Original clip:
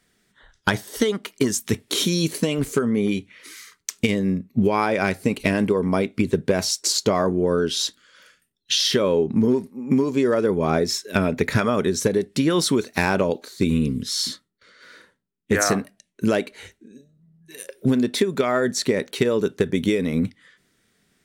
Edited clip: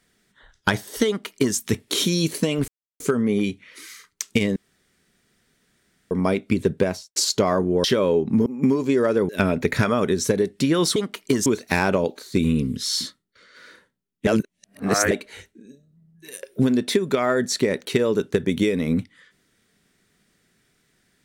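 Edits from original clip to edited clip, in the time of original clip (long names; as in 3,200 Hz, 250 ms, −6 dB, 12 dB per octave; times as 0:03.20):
0:01.07–0:01.57: duplicate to 0:12.72
0:02.68: splice in silence 0.32 s
0:04.24–0:05.79: fill with room tone
0:06.46–0:06.84: fade out and dull
0:07.52–0:08.87: remove
0:09.49–0:09.74: remove
0:10.57–0:11.05: remove
0:15.53–0:16.37: reverse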